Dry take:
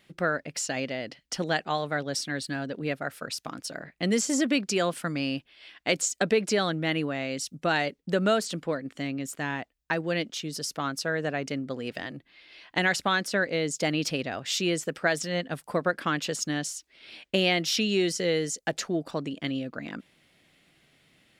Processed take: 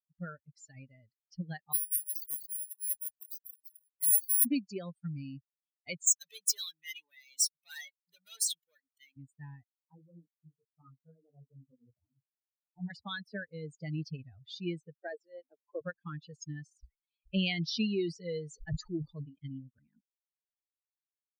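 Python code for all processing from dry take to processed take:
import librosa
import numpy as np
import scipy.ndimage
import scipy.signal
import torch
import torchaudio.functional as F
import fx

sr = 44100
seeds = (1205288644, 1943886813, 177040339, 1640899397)

y = fx.chain(x, sr, fx.resample_bad(factor=4, down='filtered', up='zero_stuff'),
    fx.cheby1_highpass(hz=2100.0, order=3), at=(1.73, 4.45))
y = fx.chain(y, sr, fx.leveller(passes=5),
    fx.differentiator(),
    fx.notch(hz=4600.0, q=8.2), at=(6.07, 9.17))
y = fx.chain(y, sr, fx.cheby1_lowpass(hz=1300.0, order=4),
    fx.detune_double(cents=35), at=(9.76, 12.9))
y = fx.chain(y, sr, fx.highpass(hz=320.0, slope=24),
    fx.tilt_shelf(db=5.5, hz=890.0), at=(14.95, 15.81))
y = fx.chain(y, sr, fx.high_shelf(hz=2500.0, db=3.0),
    fx.sustainer(db_per_s=84.0), at=(16.71, 19.44))
y = fx.bin_expand(y, sr, power=3.0)
y = fx.tone_stack(y, sr, knobs='10-0-1')
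y = F.gain(torch.from_numpy(y), 18.0).numpy()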